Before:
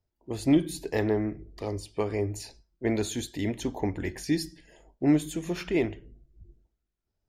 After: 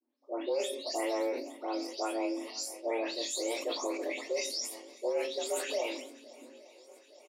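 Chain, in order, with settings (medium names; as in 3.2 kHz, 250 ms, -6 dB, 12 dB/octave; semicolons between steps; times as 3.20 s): delay that grows with frequency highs late, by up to 271 ms; peaking EQ 4.8 kHz +9.5 dB 1.1 oct; peak limiter -22.5 dBFS, peak gain reduction 11 dB; frequency shift +230 Hz; doubling 24 ms -8 dB; shuffle delay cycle 863 ms, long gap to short 1.5:1, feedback 62%, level -22 dB; decay stretcher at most 68 dB/s; trim -3 dB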